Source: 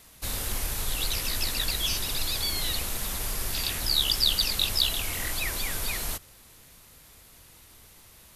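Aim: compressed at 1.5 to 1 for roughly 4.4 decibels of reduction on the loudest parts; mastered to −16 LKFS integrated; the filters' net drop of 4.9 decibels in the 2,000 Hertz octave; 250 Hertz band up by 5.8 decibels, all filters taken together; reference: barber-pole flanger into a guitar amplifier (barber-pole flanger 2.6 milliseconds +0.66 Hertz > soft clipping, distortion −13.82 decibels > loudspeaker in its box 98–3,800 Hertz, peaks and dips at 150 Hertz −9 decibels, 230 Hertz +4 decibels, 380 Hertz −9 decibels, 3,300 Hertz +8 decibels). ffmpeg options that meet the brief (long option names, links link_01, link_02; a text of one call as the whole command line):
ffmpeg -i in.wav -filter_complex "[0:a]equalizer=frequency=250:width_type=o:gain=7.5,equalizer=frequency=2000:width_type=o:gain=-8,acompressor=threshold=-33dB:ratio=1.5,asplit=2[link_01][link_02];[link_02]adelay=2.6,afreqshift=0.66[link_03];[link_01][link_03]amix=inputs=2:normalize=1,asoftclip=threshold=-31dB,highpass=98,equalizer=frequency=150:width_type=q:width=4:gain=-9,equalizer=frequency=230:width_type=q:width=4:gain=4,equalizer=frequency=380:width_type=q:width=4:gain=-9,equalizer=frequency=3300:width_type=q:width=4:gain=8,lowpass=frequency=3800:width=0.5412,lowpass=frequency=3800:width=1.3066,volume=23.5dB" out.wav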